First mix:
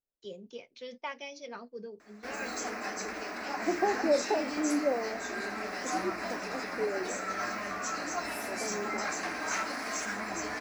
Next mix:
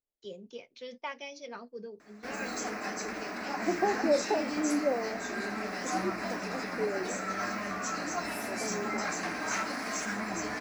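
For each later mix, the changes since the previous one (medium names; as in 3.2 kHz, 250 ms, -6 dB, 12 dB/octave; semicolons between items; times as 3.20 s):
background: add peaking EQ 170 Hz +7.5 dB 1.1 oct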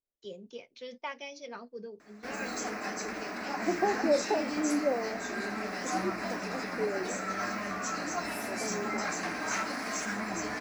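no change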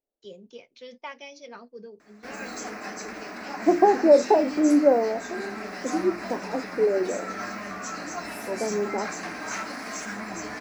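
second voice +11.0 dB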